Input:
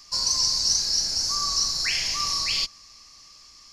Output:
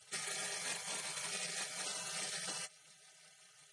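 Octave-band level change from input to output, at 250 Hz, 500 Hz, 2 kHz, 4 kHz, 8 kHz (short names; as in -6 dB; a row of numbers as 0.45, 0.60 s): -9.5, -2.5, -9.5, -21.0, -15.5 dB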